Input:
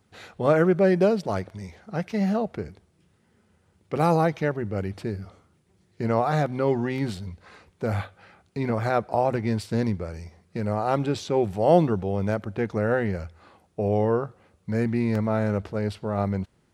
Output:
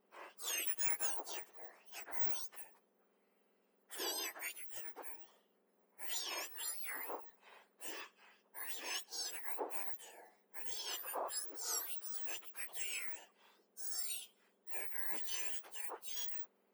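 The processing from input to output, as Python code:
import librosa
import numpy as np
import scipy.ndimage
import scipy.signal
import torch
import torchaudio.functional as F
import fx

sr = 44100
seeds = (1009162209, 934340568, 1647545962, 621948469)

y = fx.octave_mirror(x, sr, pivot_hz=2000.0)
y = fx.peak_eq(y, sr, hz=7900.0, db=-12.5, octaves=2.3)
y = y * librosa.db_to_amplitude(-4.0)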